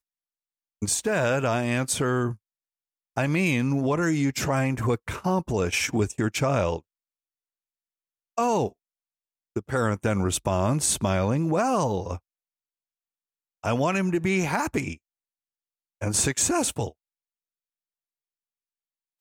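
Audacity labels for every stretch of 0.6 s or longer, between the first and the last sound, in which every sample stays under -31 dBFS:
2.330000	3.170000	silence
6.780000	8.380000	silence
8.680000	9.560000	silence
12.160000	13.640000	silence
14.940000	16.020000	silence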